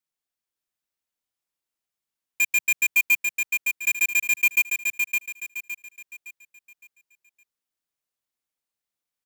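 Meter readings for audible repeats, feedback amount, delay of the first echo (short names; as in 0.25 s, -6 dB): 4, 36%, 0.563 s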